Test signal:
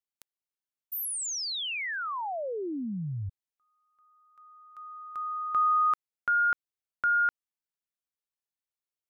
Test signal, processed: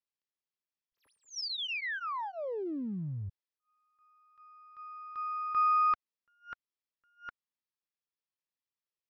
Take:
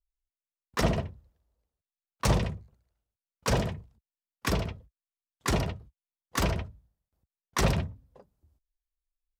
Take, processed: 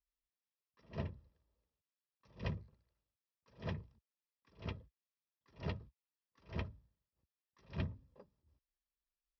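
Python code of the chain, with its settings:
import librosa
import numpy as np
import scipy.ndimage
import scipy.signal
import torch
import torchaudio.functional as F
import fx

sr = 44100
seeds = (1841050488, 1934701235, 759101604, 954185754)

y = np.where(x < 0.0, 10.0 ** (-3.0 / 20.0) * x, x)
y = scipy.signal.sosfilt(scipy.signal.ellip(4, 1.0, 40, 5500.0, 'lowpass', fs=sr, output='sos'), y)
y = fx.notch_comb(y, sr, f0_hz=730.0)
y = fx.attack_slew(y, sr, db_per_s=240.0)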